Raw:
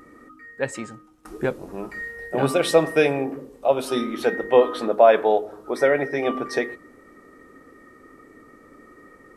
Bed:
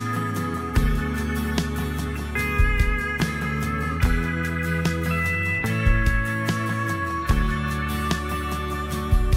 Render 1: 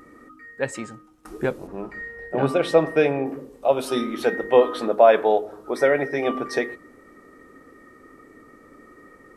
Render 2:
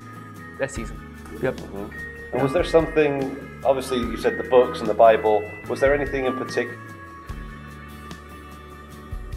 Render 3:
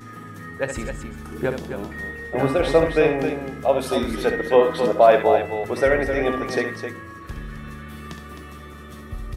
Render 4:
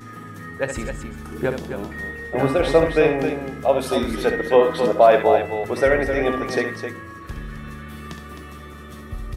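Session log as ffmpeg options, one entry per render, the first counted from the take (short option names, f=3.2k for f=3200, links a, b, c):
-filter_complex "[0:a]asettb=1/sr,asplit=3[a][b][c];[a]atrim=end=1.674[d];[b]atrim=start=1.67:end=3.26,asetpts=PTS-STARTPTS,afade=t=in:d=0.004:c=qsin,afade=t=out:st=1.586:d=0.004:c=qsin,lowpass=f=2.2k:p=1[e];[c]atrim=start=3.256[f];[d][e]acrossfade=d=0.004:c1=hsin:c2=qsin[g];[g][f]acrossfade=d=0.004:c1=qsin:c2=hsin"
-filter_complex "[1:a]volume=-14dB[a];[0:a][a]amix=inputs=2:normalize=0"
-af "aecho=1:1:67.06|262.4:0.398|0.398"
-af "volume=1dB,alimiter=limit=-3dB:level=0:latency=1"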